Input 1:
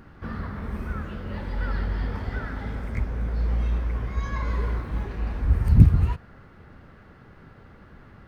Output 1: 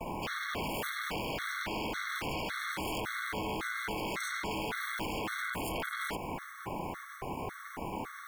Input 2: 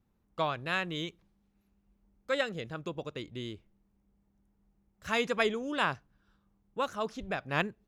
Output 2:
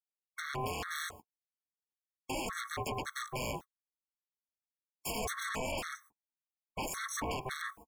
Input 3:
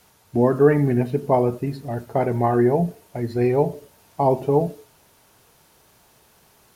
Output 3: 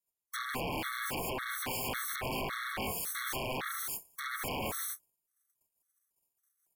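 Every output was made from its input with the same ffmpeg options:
-filter_complex "[0:a]agate=range=0.00141:threshold=0.00316:ratio=16:detection=peak,highshelf=f=7000:g=-4.5,acompressor=threshold=0.0708:ratio=6,alimiter=level_in=1.33:limit=0.0631:level=0:latency=1:release=10,volume=0.75,acrossover=split=130|280[s0][s1][s2];[s0]acompressor=threshold=0.0112:ratio=4[s3];[s1]acompressor=threshold=0.01:ratio=4[s4];[s2]acompressor=threshold=0.00794:ratio=4[s5];[s3][s4][s5]amix=inputs=3:normalize=0,aeval=exprs='val(0)*sin(2*PI*580*n/s)':c=same,aexciter=amount=13.2:drive=1.7:freq=6200,aeval=exprs='val(0)*sin(2*PI*320*n/s)':c=same,aeval=exprs='0.0501*sin(PI/2*7.94*val(0)/0.0501)':c=same,afftfilt=real='re*gt(sin(2*PI*1.8*pts/sr)*(1-2*mod(floor(b*sr/1024/1100),2)),0)':imag='im*gt(sin(2*PI*1.8*pts/sr)*(1-2*mod(floor(b*sr/1024/1100),2)),0)':win_size=1024:overlap=0.75,volume=0.708"

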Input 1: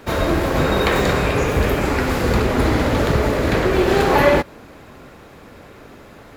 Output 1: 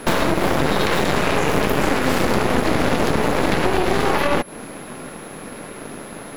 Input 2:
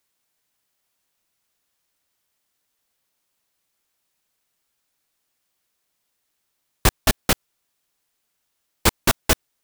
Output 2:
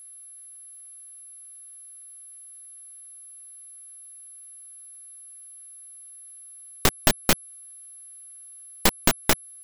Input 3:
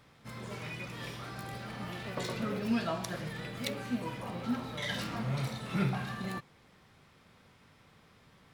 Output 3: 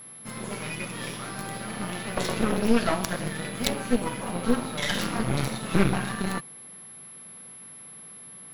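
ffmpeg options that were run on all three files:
-af "lowshelf=f=120:t=q:w=1.5:g=-10.5,alimiter=limit=0.335:level=0:latency=1:release=133,acompressor=threshold=0.0562:ratio=6,aeval=exprs='0.299*(cos(1*acos(clip(val(0)/0.299,-1,1)))-cos(1*PI/2))+0.0668*(cos(8*acos(clip(val(0)/0.299,-1,1)))-cos(8*PI/2))':c=same,aeval=exprs='val(0)+0.00355*sin(2*PI*11000*n/s)':c=same,volume=2.11"

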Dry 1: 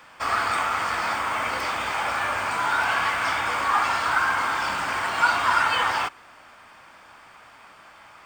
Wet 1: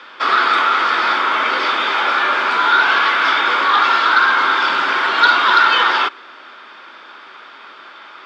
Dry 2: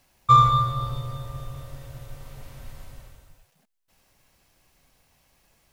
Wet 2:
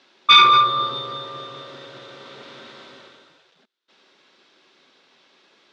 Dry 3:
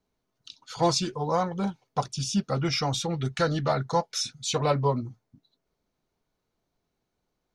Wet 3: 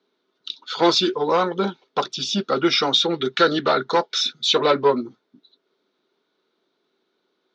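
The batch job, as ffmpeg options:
-af "aeval=exprs='0.596*sin(PI/2*3.16*val(0)/0.596)':c=same,highpass=f=230:w=0.5412,highpass=f=230:w=1.3066,equalizer=f=380:t=q:w=4:g=8,equalizer=f=730:t=q:w=4:g=-5,equalizer=f=1400:t=q:w=4:g=6,equalizer=f=3600:t=q:w=4:g=10,lowpass=f=5100:w=0.5412,lowpass=f=5100:w=1.3066,volume=0.501"

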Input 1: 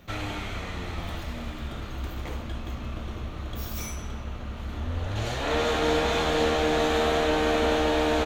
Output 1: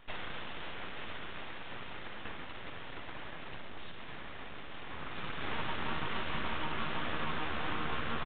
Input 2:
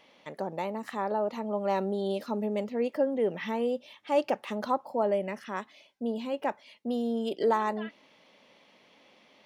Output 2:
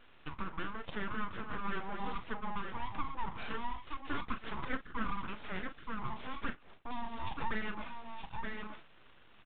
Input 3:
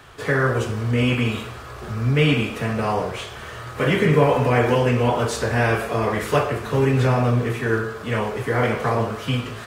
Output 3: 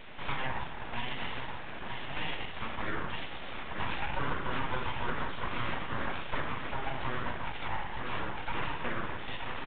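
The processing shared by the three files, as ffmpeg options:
-filter_complex "[0:a]asplit=2[s0][s1];[s1]adelay=38,volume=0.282[s2];[s0][s2]amix=inputs=2:normalize=0,aecho=1:1:924:0.355,acontrast=84,flanger=delay=3.2:depth=7:regen=-31:speed=0.91:shape=triangular,highpass=f=380:w=0.5412,highpass=f=380:w=1.3066,bandreject=f=1600:w=11,acompressor=threshold=0.0141:ratio=2,aeval=exprs='abs(val(0))':c=same,highshelf=f=2400:g=-3" -ar 8000 -c:a adpcm_g726 -b:a 40k

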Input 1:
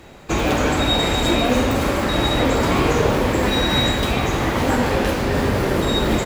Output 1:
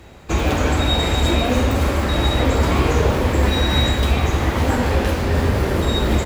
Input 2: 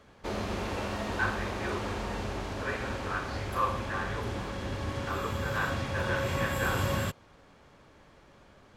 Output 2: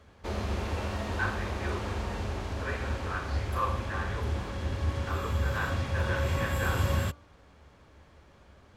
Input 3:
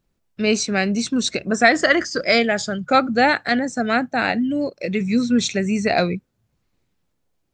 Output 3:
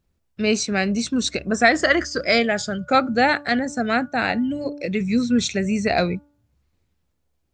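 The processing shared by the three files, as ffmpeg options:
-af "equalizer=f=72:w=2.7:g=14,bandreject=f=290.1:t=h:w=4,bandreject=f=580.2:t=h:w=4,bandreject=f=870.3:t=h:w=4,bandreject=f=1160.4:t=h:w=4,bandreject=f=1450.5:t=h:w=4,volume=0.841"

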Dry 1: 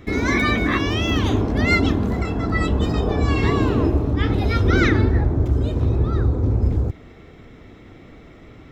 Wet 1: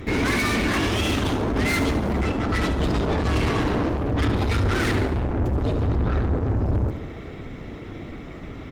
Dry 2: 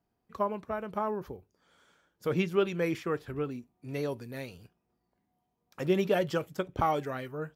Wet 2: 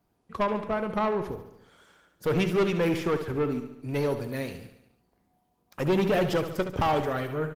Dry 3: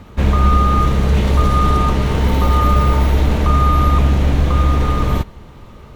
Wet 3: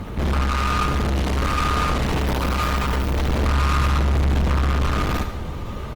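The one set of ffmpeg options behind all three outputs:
-filter_complex "[0:a]asplit=2[s0][s1];[s1]alimiter=limit=0.316:level=0:latency=1:release=30,volume=0.944[s2];[s0][s2]amix=inputs=2:normalize=0,aeval=exprs='(tanh(14.1*val(0)+0.25)-tanh(0.25))/14.1':c=same,aecho=1:1:71|142|213|284|355|426|497:0.316|0.183|0.106|0.0617|0.0358|0.0208|0.012,volume=1.41" -ar 48000 -c:a libopus -b:a 24k

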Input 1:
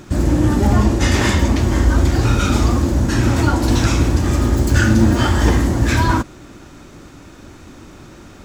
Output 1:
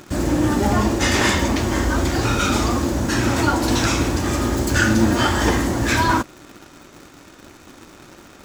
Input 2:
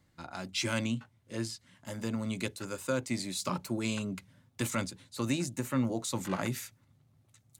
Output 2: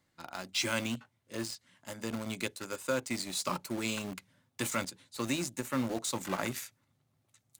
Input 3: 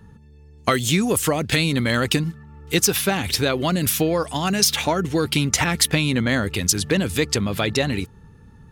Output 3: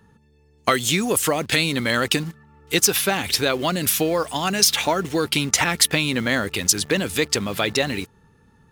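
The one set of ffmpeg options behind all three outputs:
-filter_complex "[0:a]lowshelf=f=190:g=-11.5,asplit=2[s0][s1];[s1]acrusher=bits=5:mix=0:aa=0.000001,volume=0.501[s2];[s0][s2]amix=inputs=2:normalize=0,volume=0.794"

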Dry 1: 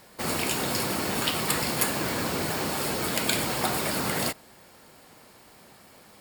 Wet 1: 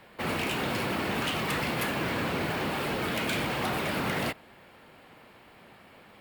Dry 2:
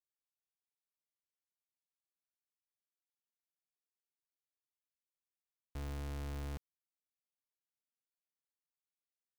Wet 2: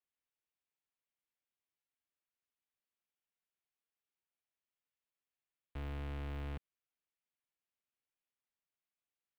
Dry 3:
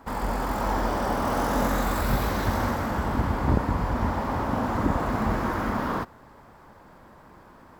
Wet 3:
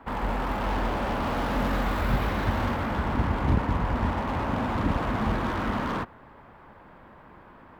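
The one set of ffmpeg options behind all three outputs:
-filter_complex "[0:a]highshelf=f=4100:t=q:w=1.5:g=-12,acrossover=split=240|7100[s0][s1][s2];[s1]asoftclip=type=hard:threshold=0.0422[s3];[s0][s3][s2]amix=inputs=3:normalize=0"

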